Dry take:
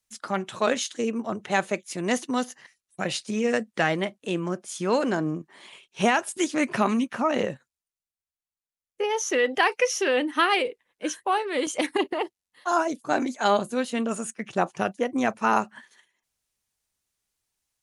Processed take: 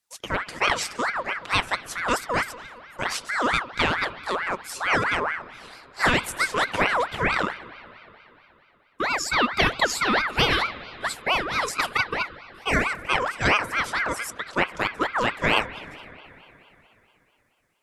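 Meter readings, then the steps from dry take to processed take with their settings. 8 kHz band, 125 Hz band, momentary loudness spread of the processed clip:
−1.0 dB, +3.0 dB, 11 LU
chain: spring reverb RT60 3.4 s, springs 60 ms, chirp 20 ms, DRR 14.5 dB
ring modulator whose carrier an LFO sweeps 1,300 Hz, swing 45%, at 4.5 Hz
level +3.5 dB

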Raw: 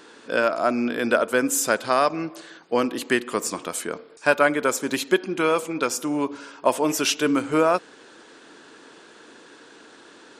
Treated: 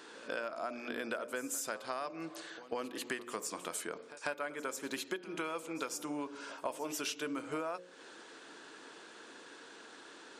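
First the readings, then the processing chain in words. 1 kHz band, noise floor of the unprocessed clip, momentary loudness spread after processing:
−17.0 dB, −49 dBFS, 14 LU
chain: low-shelf EQ 220 Hz −7.5 dB
mains-hum notches 60/120/180/240/300/360/420/480/540/600 Hz
downward compressor 6 to 1, threshold −32 dBFS, peak gain reduction 17.5 dB
backwards echo 145 ms −16.5 dB
level −4 dB

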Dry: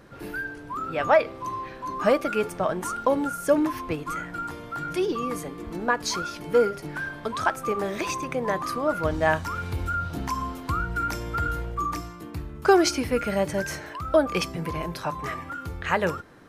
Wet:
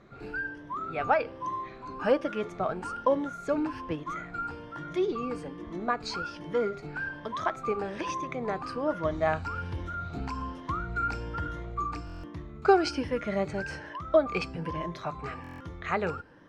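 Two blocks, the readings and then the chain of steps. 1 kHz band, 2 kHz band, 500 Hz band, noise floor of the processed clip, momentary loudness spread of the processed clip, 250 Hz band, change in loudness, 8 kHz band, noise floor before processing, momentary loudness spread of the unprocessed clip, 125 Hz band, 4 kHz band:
−4.0 dB, −5.5 dB, −4.5 dB, −46 dBFS, 10 LU, −5.0 dB, −5.0 dB, −15.0 dB, −41 dBFS, 11 LU, −5.0 dB, −7.5 dB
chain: rippled gain that drifts along the octave scale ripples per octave 1.2, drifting +1.2 Hz, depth 9 dB
high-frequency loss of the air 120 metres
buffer that repeats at 0:12.05/0:15.42, samples 1,024, times 7
level −5 dB

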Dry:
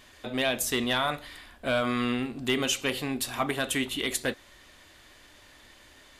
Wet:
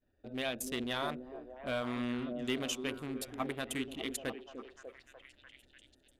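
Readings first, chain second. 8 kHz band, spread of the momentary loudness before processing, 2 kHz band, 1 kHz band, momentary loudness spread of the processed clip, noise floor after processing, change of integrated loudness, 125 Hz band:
−11.0 dB, 9 LU, −10.5 dB, −9.5 dB, 17 LU, −70 dBFS, −9.0 dB, −8.0 dB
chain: adaptive Wiener filter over 41 samples
echo through a band-pass that steps 297 ms, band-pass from 320 Hz, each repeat 0.7 octaves, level −4 dB
downward expander −55 dBFS
level −8 dB

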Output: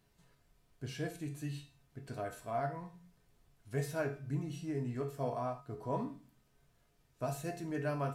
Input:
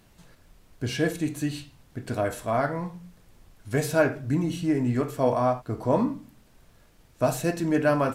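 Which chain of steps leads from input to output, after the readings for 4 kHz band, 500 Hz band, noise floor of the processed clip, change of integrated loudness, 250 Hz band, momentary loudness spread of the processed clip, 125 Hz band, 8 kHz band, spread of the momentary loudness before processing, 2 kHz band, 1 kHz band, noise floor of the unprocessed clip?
−14.0 dB, −13.5 dB, −72 dBFS, −13.0 dB, −15.0 dB, 10 LU, −10.0 dB, −13.5 dB, 11 LU, −14.5 dB, −12.0 dB, −59 dBFS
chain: tuned comb filter 140 Hz, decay 0.39 s, harmonics odd, mix 80%
level −2.5 dB

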